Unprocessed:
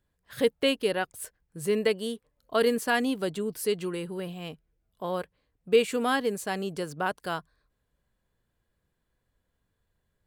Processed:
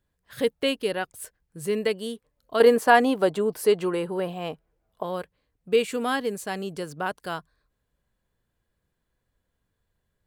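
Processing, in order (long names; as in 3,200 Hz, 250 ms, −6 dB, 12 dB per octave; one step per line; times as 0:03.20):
0:02.60–0:05.03: parametric band 770 Hz +12.5 dB 2.2 octaves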